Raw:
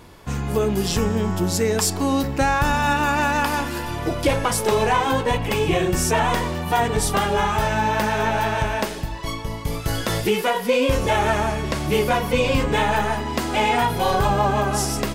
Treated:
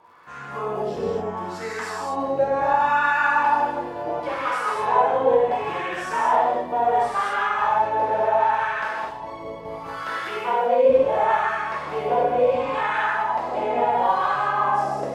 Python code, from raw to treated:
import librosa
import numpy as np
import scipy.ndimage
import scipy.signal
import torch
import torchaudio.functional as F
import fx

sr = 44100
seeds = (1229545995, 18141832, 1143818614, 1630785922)

y = fx.rev_gated(x, sr, seeds[0], gate_ms=280, shape='flat', drr_db=-7.0)
y = fx.wah_lfo(y, sr, hz=0.71, low_hz=560.0, high_hz=1400.0, q=2.4)
y = fx.dmg_crackle(y, sr, seeds[1], per_s=150.0, level_db=-53.0)
y = F.gain(torch.from_numpy(y), -2.0).numpy()